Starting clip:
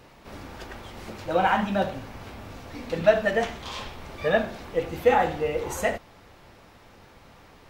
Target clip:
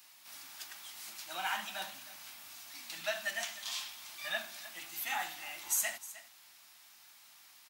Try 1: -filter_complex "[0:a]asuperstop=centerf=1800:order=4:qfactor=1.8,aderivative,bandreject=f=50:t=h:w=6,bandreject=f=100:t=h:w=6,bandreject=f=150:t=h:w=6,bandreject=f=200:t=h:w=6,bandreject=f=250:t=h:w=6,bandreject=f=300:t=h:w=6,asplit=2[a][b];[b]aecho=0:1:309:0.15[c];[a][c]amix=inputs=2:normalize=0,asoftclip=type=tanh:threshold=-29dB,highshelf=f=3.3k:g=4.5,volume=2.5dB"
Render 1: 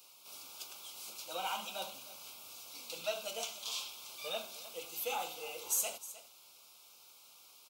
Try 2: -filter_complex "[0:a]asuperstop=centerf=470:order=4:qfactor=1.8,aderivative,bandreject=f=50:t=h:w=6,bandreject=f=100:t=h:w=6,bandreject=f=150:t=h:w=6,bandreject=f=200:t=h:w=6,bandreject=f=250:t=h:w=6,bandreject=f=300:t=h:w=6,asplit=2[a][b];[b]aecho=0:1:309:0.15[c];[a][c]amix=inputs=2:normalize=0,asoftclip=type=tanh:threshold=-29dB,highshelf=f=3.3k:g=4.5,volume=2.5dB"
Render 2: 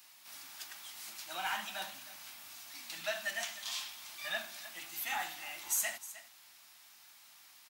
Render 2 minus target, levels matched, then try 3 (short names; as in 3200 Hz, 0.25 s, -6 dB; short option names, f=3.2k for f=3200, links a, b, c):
soft clip: distortion +11 dB
-filter_complex "[0:a]asuperstop=centerf=470:order=4:qfactor=1.8,aderivative,bandreject=f=50:t=h:w=6,bandreject=f=100:t=h:w=6,bandreject=f=150:t=h:w=6,bandreject=f=200:t=h:w=6,bandreject=f=250:t=h:w=6,bandreject=f=300:t=h:w=6,asplit=2[a][b];[b]aecho=0:1:309:0.15[c];[a][c]amix=inputs=2:normalize=0,asoftclip=type=tanh:threshold=-22.5dB,highshelf=f=3.3k:g=4.5,volume=2.5dB"